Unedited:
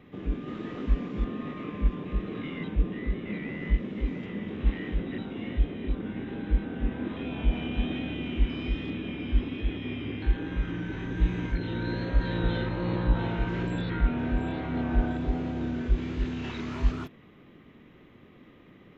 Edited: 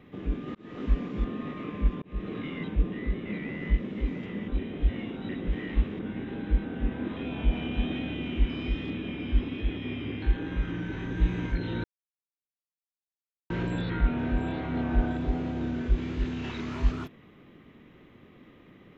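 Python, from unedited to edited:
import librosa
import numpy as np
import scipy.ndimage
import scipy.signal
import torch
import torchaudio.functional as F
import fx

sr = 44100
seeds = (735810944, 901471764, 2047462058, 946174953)

y = fx.edit(x, sr, fx.fade_in_span(start_s=0.55, length_s=0.29),
    fx.fade_in_span(start_s=2.02, length_s=0.25),
    fx.reverse_span(start_s=4.48, length_s=1.51),
    fx.silence(start_s=11.84, length_s=1.66), tone=tone)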